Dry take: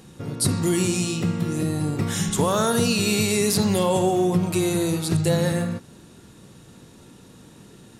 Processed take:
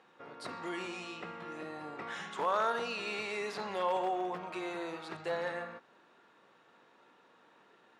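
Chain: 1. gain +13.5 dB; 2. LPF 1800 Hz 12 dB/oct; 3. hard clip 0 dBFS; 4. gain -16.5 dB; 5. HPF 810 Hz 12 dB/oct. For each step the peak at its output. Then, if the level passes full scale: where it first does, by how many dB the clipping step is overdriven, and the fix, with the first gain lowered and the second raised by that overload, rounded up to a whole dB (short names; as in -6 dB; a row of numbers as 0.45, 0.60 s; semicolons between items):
+4.5, +4.0, 0.0, -16.5, -20.0 dBFS; step 1, 4.0 dB; step 1 +9.5 dB, step 4 -12.5 dB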